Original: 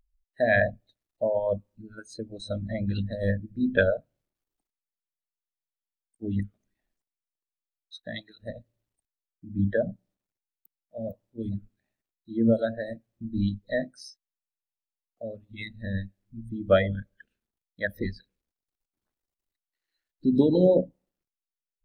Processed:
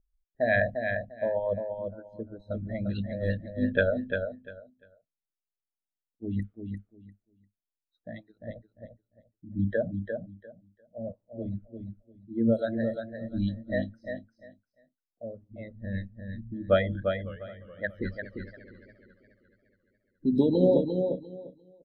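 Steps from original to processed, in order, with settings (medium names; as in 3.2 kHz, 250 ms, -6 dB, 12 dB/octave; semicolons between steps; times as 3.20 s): level-controlled noise filter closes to 490 Hz, open at -21.5 dBFS; feedback delay 348 ms, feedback 19%, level -6 dB; 16.98–20.74 s: modulated delay 210 ms, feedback 66%, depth 210 cents, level -15 dB; trim -2.5 dB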